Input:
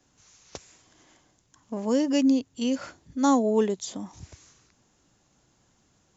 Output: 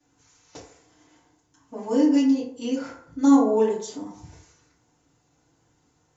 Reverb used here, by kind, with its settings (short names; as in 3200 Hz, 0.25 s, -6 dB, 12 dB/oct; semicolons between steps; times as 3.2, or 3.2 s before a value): FDN reverb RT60 0.66 s, low-frequency decay 0.75×, high-frequency decay 0.45×, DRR -9.5 dB; gain -10 dB